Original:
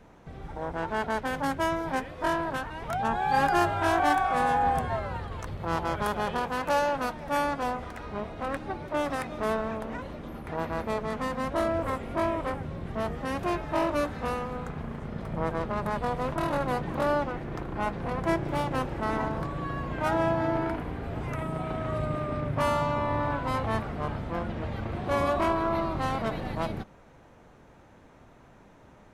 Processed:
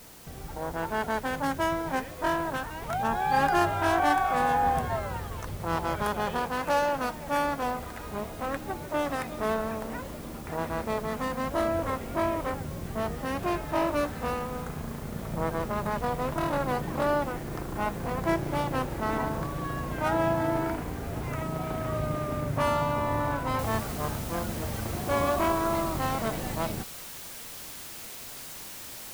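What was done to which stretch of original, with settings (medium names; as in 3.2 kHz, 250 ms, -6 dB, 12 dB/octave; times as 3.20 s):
23.59 s: noise floor step -51 dB -42 dB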